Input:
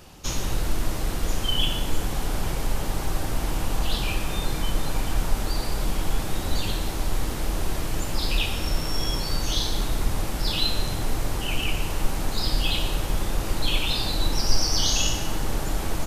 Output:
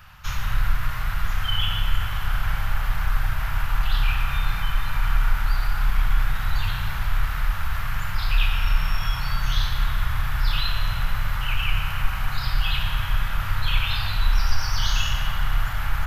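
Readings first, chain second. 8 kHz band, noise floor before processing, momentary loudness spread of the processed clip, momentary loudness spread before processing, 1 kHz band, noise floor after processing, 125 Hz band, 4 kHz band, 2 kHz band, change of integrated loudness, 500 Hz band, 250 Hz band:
-10.5 dB, -29 dBFS, 4 LU, 5 LU, +2.5 dB, -28 dBFS, +3.0 dB, -2.5 dB, +5.5 dB, +1.0 dB, -13.0 dB, -10.0 dB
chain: in parallel at -11 dB: soft clip -21 dBFS, distortion -11 dB; on the sum: EQ curve 120 Hz 0 dB, 340 Hz -28 dB, 1400 Hz +7 dB, 8800 Hz -16 dB, 13000 Hz -3 dB; spring tank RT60 3.2 s, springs 31 ms, chirp 65 ms, DRR 3 dB

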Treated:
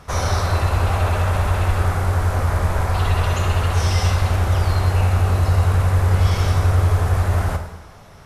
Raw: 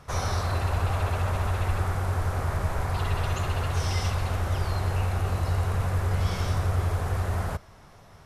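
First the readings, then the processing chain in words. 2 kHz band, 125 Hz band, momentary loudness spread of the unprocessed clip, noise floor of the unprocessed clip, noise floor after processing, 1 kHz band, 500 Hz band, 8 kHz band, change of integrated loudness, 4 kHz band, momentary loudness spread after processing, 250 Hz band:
+7.5 dB, +9.0 dB, 2 LU, -51 dBFS, -42 dBFS, +7.5 dB, +7.5 dB, +7.5 dB, +9.0 dB, +7.5 dB, 3 LU, +7.0 dB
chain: plate-style reverb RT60 1.1 s, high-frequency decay 0.9×, DRR 5 dB; gain +6.5 dB

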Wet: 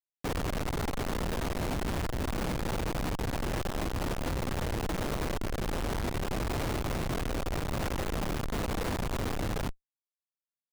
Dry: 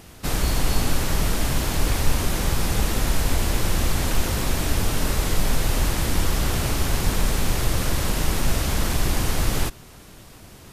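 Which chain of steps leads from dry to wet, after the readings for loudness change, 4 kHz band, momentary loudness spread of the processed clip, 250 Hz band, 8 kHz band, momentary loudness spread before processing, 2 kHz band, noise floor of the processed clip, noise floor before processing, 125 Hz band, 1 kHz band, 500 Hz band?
-9.5 dB, -12.5 dB, 1 LU, -6.0 dB, -16.0 dB, 1 LU, -9.0 dB, under -85 dBFS, -45 dBFS, -9.5 dB, -6.0 dB, -4.5 dB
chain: three-band isolator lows -16 dB, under 410 Hz, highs -15 dB, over 6200 Hz; Schmitt trigger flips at -26 dBFS

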